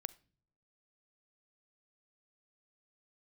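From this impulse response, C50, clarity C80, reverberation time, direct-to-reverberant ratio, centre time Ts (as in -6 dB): 20.5 dB, 25.0 dB, not exponential, 18.0 dB, 2 ms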